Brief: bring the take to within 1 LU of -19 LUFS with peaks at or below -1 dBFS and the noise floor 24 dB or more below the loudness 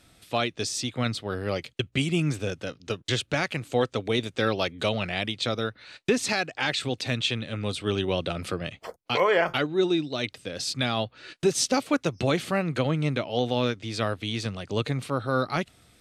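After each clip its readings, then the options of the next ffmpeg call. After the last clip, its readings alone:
loudness -27.5 LUFS; peak level -12.0 dBFS; loudness target -19.0 LUFS
-> -af "volume=2.66"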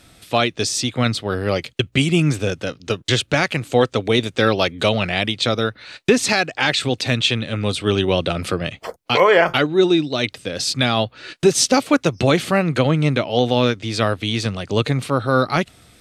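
loudness -19.0 LUFS; peak level -3.5 dBFS; noise floor -55 dBFS

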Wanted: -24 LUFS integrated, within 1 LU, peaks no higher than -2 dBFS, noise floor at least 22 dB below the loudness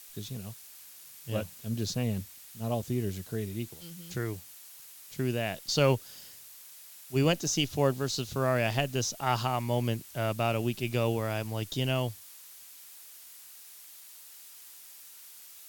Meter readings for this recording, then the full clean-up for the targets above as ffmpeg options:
noise floor -50 dBFS; noise floor target -53 dBFS; loudness -31.0 LUFS; peak level -13.0 dBFS; loudness target -24.0 LUFS
-> -af "afftdn=nr=6:nf=-50"
-af "volume=2.24"

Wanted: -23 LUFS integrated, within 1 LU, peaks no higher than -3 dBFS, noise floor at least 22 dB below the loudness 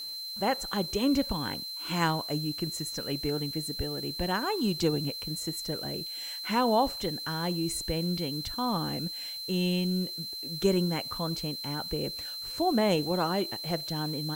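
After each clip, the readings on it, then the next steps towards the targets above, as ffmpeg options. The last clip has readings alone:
steady tone 4.1 kHz; tone level -36 dBFS; noise floor -39 dBFS; noise floor target -52 dBFS; loudness -30.0 LUFS; peak level -13.0 dBFS; loudness target -23.0 LUFS
-> -af "bandreject=f=4100:w=30"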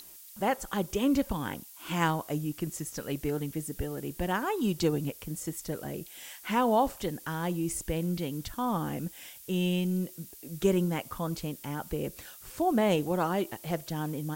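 steady tone not found; noise floor -50 dBFS; noise floor target -54 dBFS
-> -af "afftdn=nr=6:nf=-50"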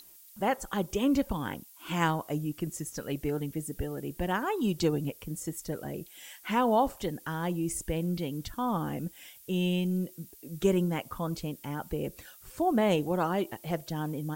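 noise floor -54 dBFS; loudness -31.5 LUFS; peak level -13.0 dBFS; loudness target -23.0 LUFS
-> -af "volume=2.66"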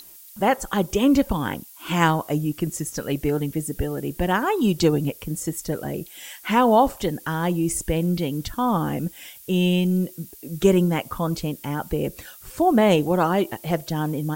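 loudness -23.0 LUFS; peak level -4.5 dBFS; noise floor -46 dBFS

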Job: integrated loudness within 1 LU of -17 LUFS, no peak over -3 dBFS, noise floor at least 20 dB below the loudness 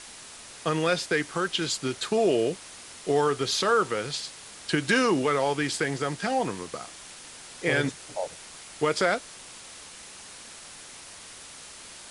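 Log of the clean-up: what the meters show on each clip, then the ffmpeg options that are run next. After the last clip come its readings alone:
noise floor -45 dBFS; noise floor target -47 dBFS; loudness -27.0 LUFS; peak level -9.5 dBFS; loudness target -17.0 LUFS
-> -af "afftdn=nr=6:nf=-45"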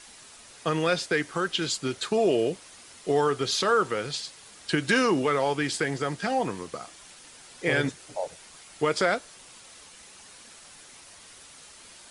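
noise floor -50 dBFS; loudness -27.0 LUFS; peak level -9.5 dBFS; loudness target -17.0 LUFS
-> -af "volume=3.16,alimiter=limit=0.708:level=0:latency=1"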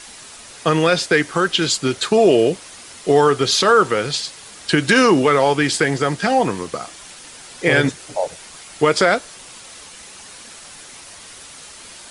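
loudness -17.0 LUFS; peak level -3.0 dBFS; noise floor -40 dBFS

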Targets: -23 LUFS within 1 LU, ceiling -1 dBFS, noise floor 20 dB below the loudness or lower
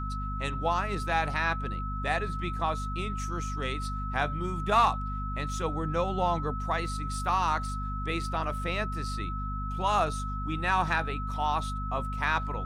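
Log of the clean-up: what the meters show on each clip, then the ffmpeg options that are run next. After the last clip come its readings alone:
hum 50 Hz; highest harmonic 250 Hz; hum level -32 dBFS; steady tone 1.3 kHz; tone level -36 dBFS; loudness -30.0 LUFS; peak level -12.5 dBFS; loudness target -23.0 LUFS
-> -af "bandreject=f=50:t=h:w=4,bandreject=f=100:t=h:w=4,bandreject=f=150:t=h:w=4,bandreject=f=200:t=h:w=4,bandreject=f=250:t=h:w=4"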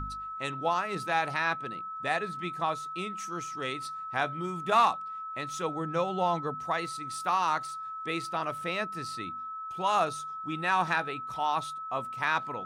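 hum not found; steady tone 1.3 kHz; tone level -36 dBFS
-> -af "bandreject=f=1300:w=30"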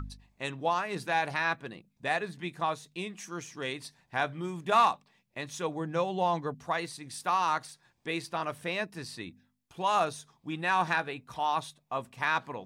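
steady tone not found; loudness -31.5 LUFS; peak level -13.5 dBFS; loudness target -23.0 LUFS
-> -af "volume=2.66"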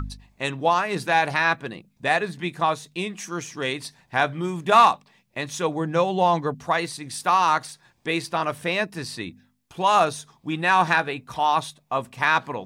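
loudness -23.0 LUFS; peak level -5.0 dBFS; noise floor -65 dBFS

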